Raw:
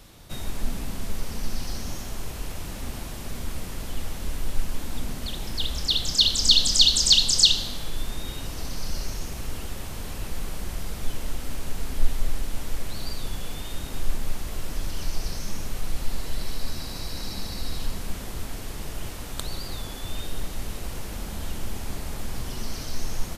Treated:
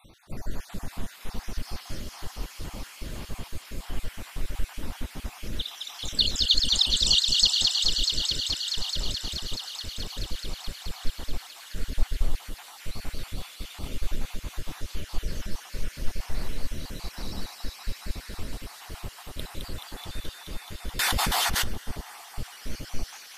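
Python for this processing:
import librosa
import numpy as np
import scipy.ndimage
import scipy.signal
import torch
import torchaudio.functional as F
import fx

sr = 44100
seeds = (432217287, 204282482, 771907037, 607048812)

p1 = fx.spec_dropout(x, sr, seeds[0], share_pct=59)
p2 = fx.high_shelf(p1, sr, hz=4200.0, db=-7.0)
p3 = p2 + fx.echo_wet_highpass(p2, sr, ms=214, feedback_pct=85, hz=1400.0, wet_db=-3.5, dry=0)
y = fx.env_flatten(p3, sr, amount_pct=100, at=(20.99, 21.64))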